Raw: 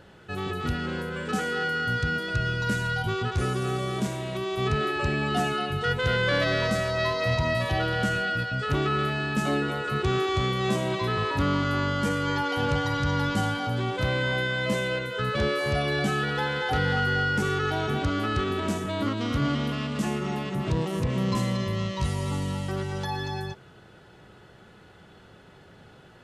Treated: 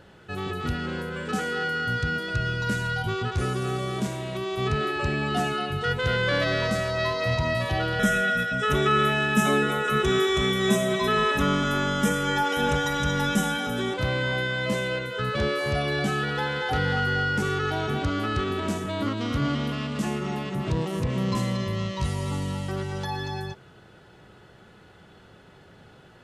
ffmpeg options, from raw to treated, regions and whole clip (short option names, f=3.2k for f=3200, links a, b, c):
-filter_complex "[0:a]asettb=1/sr,asplit=3[a][b][c];[a]atrim=end=7.994[d];[b]atrim=start=7.99:end=13.94,asetpts=PTS-STARTPTS,afade=t=in:d=0.004:c=qsin,afade=t=out:st=5.946:d=0.004:c=qsin,asuperstop=centerf=4500:order=4:qfactor=3.9,highshelf=f=7.3k:g=11,aecho=1:1:4.7:0.98,atrim=end_sample=262395[e];[c]atrim=start=13.936[f];[d][e]acrossfade=d=0.004:c1=hsin:c2=qsin[g];[g][f]acrossfade=d=0.004:c1=qsin:c2=hsin"